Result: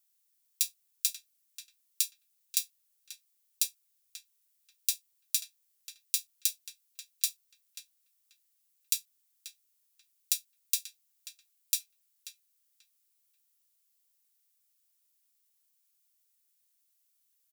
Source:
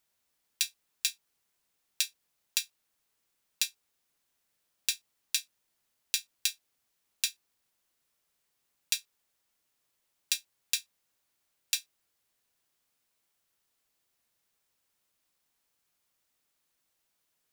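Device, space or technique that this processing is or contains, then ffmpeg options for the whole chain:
one-band saturation: -filter_complex "[0:a]aderivative,acrossover=split=230|3700[a][b][c];[b]asoftclip=type=tanh:threshold=-34.5dB[d];[a][d][c]amix=inputs=3:normalize=0,asplit=2[e][f];[f]adelay=536,lowpass=f=2.5k:p=1,volume=-8dB,asplit=2[g][h];[h]adelay=536,lowpass=f=2.5k:p=1,volume=0.25,asplit=2[i][j];[j]adelay=536,lowpass=f=2.5k:p=1,volume=0.25[k];[e][g][i][k]amix=inputs=4:normalize=0,volume=1.5dB"

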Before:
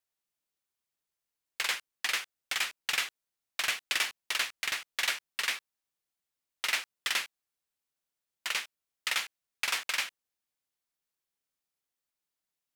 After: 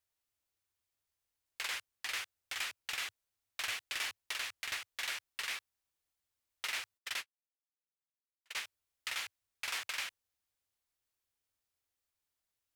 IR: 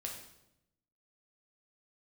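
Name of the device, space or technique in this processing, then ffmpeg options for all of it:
car stereo with a boomy subwoofer: -filter_complex "[0:a]asplit=3[a][b][c];[a]afade=t=out:st=6.97:d=0.02[d];[b]agate=range=-40dB:threshold=-29dB:ratio=16:detection=peak,afade=t=in:st=6.97:d=0.02,afade=t=out:st=8.55:d=0.02[e];[c]afade=t=in:st=8.55:d=0.02[f];[d][e][f]amix=inputs=3:normalize=0,lowshelf=f=120:t=q:w=3:g=6,alimiter=level_in=2.5dB:limit=-24dB:level=0:latency=1:release=69,volume=-2.5dB"

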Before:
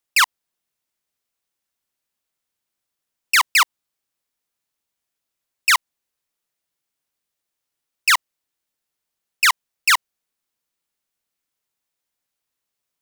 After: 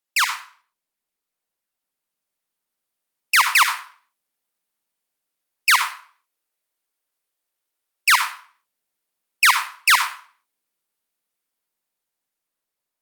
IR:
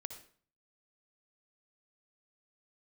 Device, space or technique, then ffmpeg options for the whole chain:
far-field microphone of a smart speaker: -filter_complex "[0:a]asplit=3[a][b][c];[a]afade=t=out:st=5.7:d=0.02[d];[b]highpass=f=290:w=0.5412,highpass=f=290:w=1.3066,afade=t=in:st=5.7:d=0.02,afade=t=out:st=8.14:d=0.02[e];[c]afade=t=in:st=8.14:d=0.02[f];[d][e][f]amix=inputs=3:normalize=0[g];[1:a]atrim=start_sample=2205[h];[g][h]afir=irnorm=-1:irlink=0,highpass=f=160:w=0.5412,highpass=f=160:w=1.3066,dynaudnorm=f=760:g=7:m=13.5dB" -ar 48000 -c:a libopus -b:a 48k

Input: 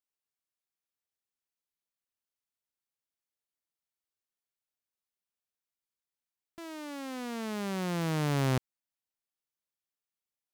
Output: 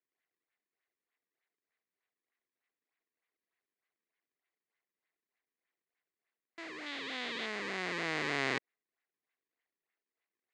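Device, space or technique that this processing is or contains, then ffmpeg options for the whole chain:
circuit-bent sampling toy: -filter_complex "[0:a]acrusher=samples=36:mix=1:aa=0.000001:lfo=1:lforange=57.6:lforate=3.3,highpass=530,equalizer=f=570:t=q:w=4:g=-9,equalizer=f=890:t=q:w=4:g=-8,equalizer=f=1.3k:t=q:w=4:g=-5,equalizer=f=2k:t=q:w=4:g=8,equalizer=f=3.2k:t=q:w=4:g=-3,equalizer=f=5.6k:t=q:w=4:g=-8,lowpass=f=5.9k:w=0.5412,lowpass=f=5.9k:w=1.3066,asettb=1/sr,asplit=3[a][b][c];[a]atrim=end=6.864[d];[b]atrim=start=6.86:end=7.46,asetpts=PTS-STARTPTS,afade=t=in:d=0.004:c=qsin,afade=t=out:st=0.596:d=0.004:c=qsin,equalizer=f=3.5k:w=2.5:g=11[e];[c]atrim=start=7.456[f];[d][e]acrossfade=d=0.004:c1=hsin:c2=qsin[g];[g][f]acrossfade=d=0.004:c1=qsin:c2=hsin,volume=4dB"

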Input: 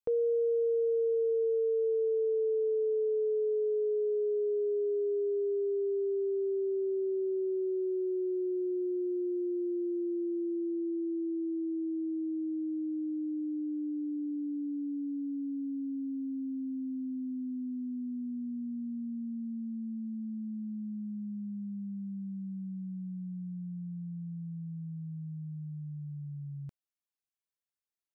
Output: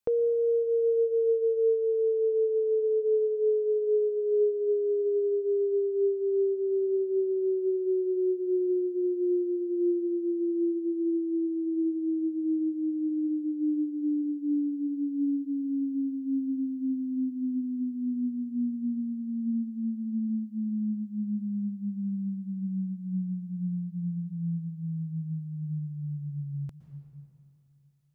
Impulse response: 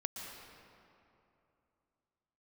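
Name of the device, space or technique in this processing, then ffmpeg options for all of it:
ducked reverb: -filter_complex "[0:a]asplit=3[a][b][c];[1:a]atrim=start_sample=2205[d];[b][d]afir=irnorm=-1:irlink=0[e];[c]apad=whole_len=1241298[f];[e][f]sidechaincompress=threshold=-33dB:ratio=8:attack=16:release=981,volume=2dB[g];[a][g]amix=inputs=2:normalize=0"

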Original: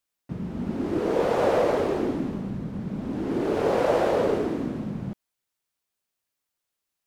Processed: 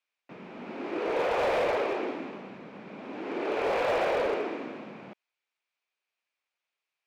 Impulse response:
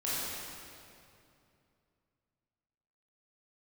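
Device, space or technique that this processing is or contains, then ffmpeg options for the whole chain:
megaphone: -af "highpass=500,lowpass=4k,equalizer=f=2.4k:t=o:w=0.33:g=9,asoftclip=type=hard:threshold=-23dB"

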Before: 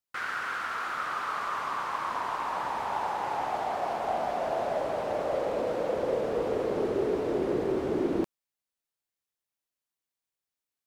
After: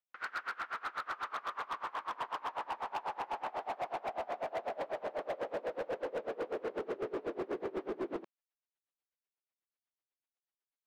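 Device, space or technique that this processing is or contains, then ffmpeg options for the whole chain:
helicopter radio: -af "highpass=310,lowpass=2.9k,aeval=exprs='val(0)*pow(10,-26*(0.5-0.5*cos(2*PI*8.1*n/s))/20)':c=same,asoftclip=type=hard:threshold=-32dB"

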